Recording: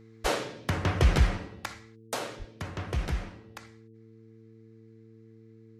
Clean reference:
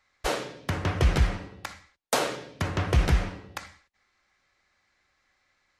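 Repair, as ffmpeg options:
-filter_complex "[0:a]bandreject=f=111.8:t=h:w=4,bandreject=f=223.6:t=h:w=4,bandreject=f=335.4:t=h:w=4,bandreject=f=447.2:t=h:w=4,asplit=3[a][b][c];[a]afade=t=out:st=2.38:d=0.02[d];[b]highpass=f=140:w=0.5412,highpass=f=140:w=1.3066,afade=t=in:st=2.38:d=0.02,afade=t=out:st=2.5:d=0.02[e];[c]afade=t=in:st=2.5:d=0.02[f];[d][e][f]amix=inputs=3:normalize=0,asetnsamples=n=441:p=0,asendcmd='2.07 volume volume 8.5dB',volume=0dB"

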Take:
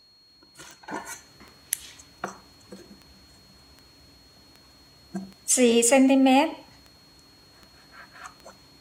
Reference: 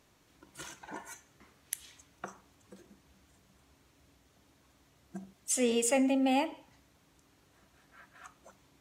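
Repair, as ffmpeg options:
-af "adeclick=t=4,bandreject=f=4.3k:w=30,asetnsamples=n=441:p=0,asendcmd='0.88 volume volume -9.5dB',volume=0dB"

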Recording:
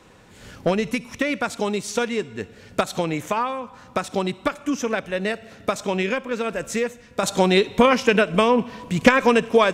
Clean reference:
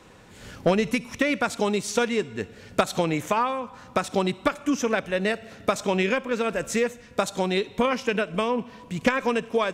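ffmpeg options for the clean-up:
-af "asetnsamples=n=441:p=0,asendcmd='7.23 volume volume -7.5dB',volume=0dB"

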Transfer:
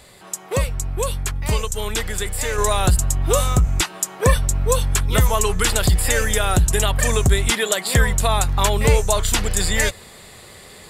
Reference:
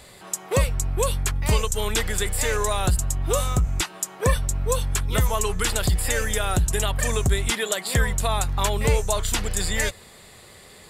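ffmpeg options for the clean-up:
-af "asetnsamples=n=441:p=0,asendcmd='2.58 volume volume -5dB',volume=0dB"

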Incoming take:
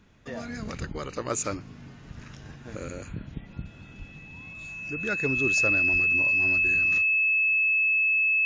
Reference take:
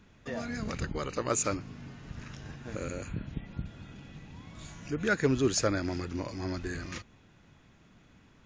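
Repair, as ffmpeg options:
-filter_complex "[0:a]bandreject=f=2.6k:w=30,asplit=3[a][b][c];[a]afade=t=out:st=3.98:d=0.02[d];[b]highpass=f=140:w=0.5412,highpass=f=140:w=1.3066,afade=t=in:st=3.98:d=0.02,afade=t=out:st=4.1:d=0.02[e];[c]afade=t=in:st=4.1:d=0.02[f];[d][e][f]amix=inputs=3:normalize=0,asplit=3[g][h][i];[g]afade=t=out:st=5.92:d=0.02[j];[h]highpass=f=140:w=0.5412,highpass=f=140:w=1.3066,afade=t=in:st=5.92:d=0.02,afade=t=out:st=6.04:d=0.02[k];[i]afade=t=in:st=6.04:d=0.02[l];[j][k][l]amix=inputs=3:normalize=0,asetnsamples=n=441:p=0,asendcmd='4.53 volume volume 3dB',volume=0dB"

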